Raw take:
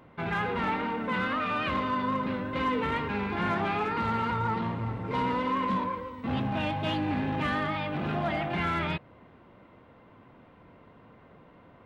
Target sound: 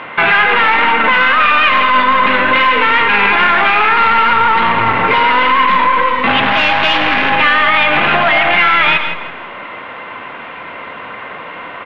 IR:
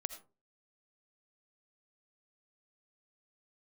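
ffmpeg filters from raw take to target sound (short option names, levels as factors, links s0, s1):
-filter_complex "[0:a]asettb=1/sr,asplit=3[s0][s1][s2];[s0]atrim=end=6.434[s3];[s1]atrim=start=6.43:end=7.3,asetpts=PTS-STARTPTS,afade=t=in:d=0.004:c=qsin,afade=t=out:st=0.866:d=0.004:c=qsin,aeval=exprs='0.119*(cos(1*acos(clip(val(0)/0.119,-1,1)))-cos(1*PI/2))+0.0188*(cos(8*acos(clip(val(0)/0.119,-1,1)))-cos(8*PI/2))':c=same[s4];[s2]atrim=start=7.296[s5];[s3][s4]acrossfade=d=0.004:c1=hsin:c2=qsin[s6];[s6][s5]acrossfade=d=0.004:c1=qsin:c2=hsin,aemphasis=mode=production:type=riaa,aeval=exprs='(tanh(22.4*val(0)+0.4)-tanh(0.4))/22.4':c=same,acompressor=threshold=0.0178:ratio=6,lowpass=f=2800:w=0.5412,lowpass=f=2800:w=1.3066,tiltshelf=f=640:g=-10,aecho=1:1:165|330|495:0.2|0.0638|0.0204,asplit=2[s7][s8];[1:a]atrim=start_sample=2205,asetrate=36603,aresample=44100,lowshelf=f=380:g=8.5[s9];[s8][s9]afir=irnorm=-1:irlink=0,volume=2.24[s10];[s7][s10]amix=inputs=2:normalize=0,alimiter=level_in=7.94:limit=0.891:release=50:level=0:latency=1,volume=0.841"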